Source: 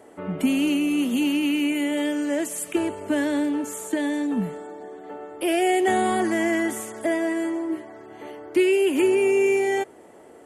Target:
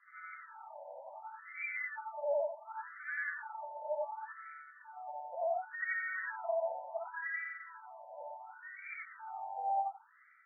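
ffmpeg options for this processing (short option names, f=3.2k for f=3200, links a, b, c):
-filter_complex "[0:a]afftfilt=real='re':imag='-im':win_size=8192:overlap=0.75,bandreject=f=1.1k:w=5.2,acrossover=split=130|2700[a][b][c];[b]alimiter=limit=-22.5dB:level=0:latency=1:release=121[d];[a][d][c]amix=inputs=3:normalize=0,afftfilt=real='re*between(b*sr/1024,720*pow(1700/720,0.5+0.5*sin(2*PI*0.69*pts/sr))/1.41,720*pow(1700/720,0.5+0.5*sin(2*PI*0.69*pts/sr))*1.41)':imag='im*between(b*sr/1024,720*pow(1700/720,0.5+0.5*sin(2*PI*0.69*pts/sr))/1.41,720*pow(1700/720,0.5+0.5*sin(2*PI*0.69*pts/sr))*1.41)':win_size=1024:overlap=0.75,volume=3.5dB"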